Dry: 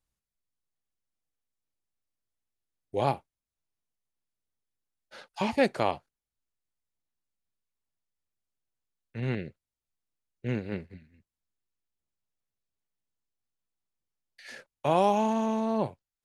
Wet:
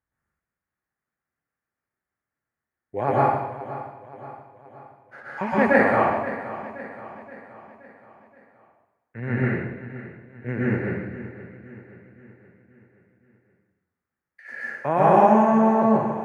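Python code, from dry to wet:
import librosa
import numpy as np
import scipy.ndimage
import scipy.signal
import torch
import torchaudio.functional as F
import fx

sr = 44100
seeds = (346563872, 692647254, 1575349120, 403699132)

p1 = scipy.signal.sosfilt(scipy.signal.butter(2, 59.0, 'highpass', fs=sr, output='sos'), x)
p2 = fx.high_shelf_res(p1, sr, hz=2500.0, db=-12.5, q=3.0)
p3 = p2 + fx.echo_feedback(p2, sr, ms=524, feedback_pct=51, wet_db=-14.0, dry=0)
y = fx.rev_plate(p3, sr, seeds[0], rt60_s=1.0, hf_ratio=0.95, predelay_ms=105, drr_db=-7.5)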